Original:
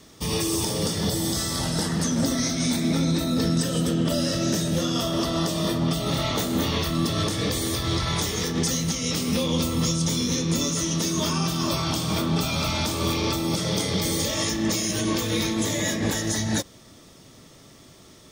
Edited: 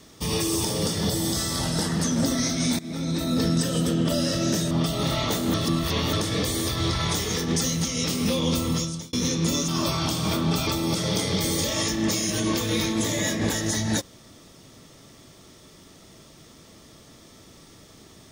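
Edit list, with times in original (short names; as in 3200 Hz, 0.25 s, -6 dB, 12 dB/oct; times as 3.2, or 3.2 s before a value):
2.79–3.33 fade in, from -18 dB
4.71–5.78 cut
6.61–7.2 reverse
9.74–10.2 fade out
10.75–11.53 cut
12.52–13.28 cut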